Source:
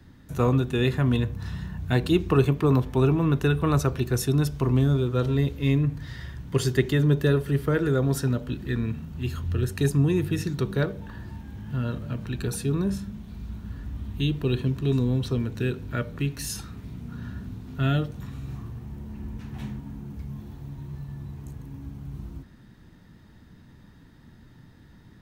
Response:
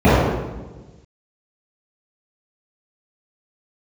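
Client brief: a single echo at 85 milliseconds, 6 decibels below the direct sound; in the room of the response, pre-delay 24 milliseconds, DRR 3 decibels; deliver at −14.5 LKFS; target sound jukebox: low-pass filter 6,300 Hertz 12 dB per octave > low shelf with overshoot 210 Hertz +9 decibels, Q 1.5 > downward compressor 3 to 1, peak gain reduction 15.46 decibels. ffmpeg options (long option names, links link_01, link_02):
-filter_complex "[0:a]aecho=1:1:85:0.501,asplit=2[link_01][link_02];[1:a]atrim=start_sample=2205,adelay=24[link_03];[link_02][link_03]afir=irnorm=-1:irlink=0,volume=-33dB[link_04];[link_01][link_04]amix=inputs=2:normalize=0,lowpass=6300,lowshelf=frequency=210:width_type=q:width=1.5:gain=9,acompressor=threshold=-16dB:ratio=3,volume=3dB"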